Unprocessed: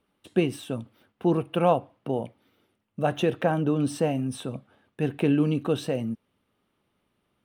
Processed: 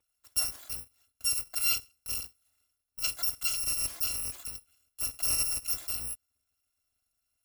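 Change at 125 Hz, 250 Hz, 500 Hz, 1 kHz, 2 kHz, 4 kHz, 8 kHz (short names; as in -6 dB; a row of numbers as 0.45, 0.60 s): -22.5, -32.5, -30.5, -19.5, -3.0, +6.5, +15.5 dB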